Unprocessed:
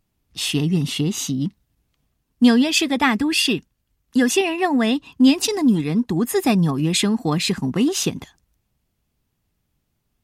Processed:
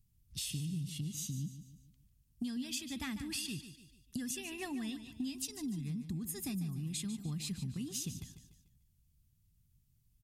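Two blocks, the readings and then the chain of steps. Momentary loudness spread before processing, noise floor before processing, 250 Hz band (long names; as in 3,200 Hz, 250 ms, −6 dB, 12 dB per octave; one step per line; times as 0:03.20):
8 LU, −73 dBFS, −22.0 dB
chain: drawn EQ curve 130 Hz 0 dB, 480 Hz −26 dB, 1,000 Hz −23 dB, 9,300 Hz −3 dB
downward compressor 6 to 1, threshold −40 dBFS, peak gain reduction 17.5 dB
on a send: repeating echo 147 ms, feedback 42%, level −11.5 dB
on the sum: level +2 dB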